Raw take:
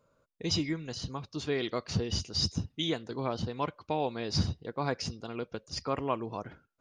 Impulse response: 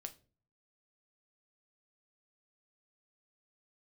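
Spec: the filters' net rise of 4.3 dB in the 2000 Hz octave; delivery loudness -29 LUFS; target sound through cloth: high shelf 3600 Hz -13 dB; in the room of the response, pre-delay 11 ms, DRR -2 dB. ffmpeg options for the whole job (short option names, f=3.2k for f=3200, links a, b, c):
-filter_complex "[0:a]equalizer=f=2k:t=o:g=9,asplit=2[a][b];[1:a]atrim=start_sample=2205,adelay=11[c];[b][c]afir=irnorm=-1:irlink=0,volume=6.5dB[d];[a][d]amix=inputs=2:normalize=0,highshelf=f=3.6k:g=-13,volume=1dB"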